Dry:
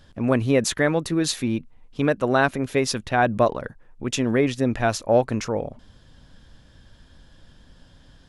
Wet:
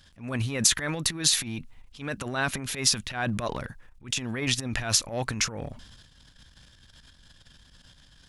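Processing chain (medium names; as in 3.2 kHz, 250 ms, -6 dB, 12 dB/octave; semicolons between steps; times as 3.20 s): transient shaper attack -11 dB, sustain +9 dB; amplifier tone stack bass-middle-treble 5-5-5; trim +8 dB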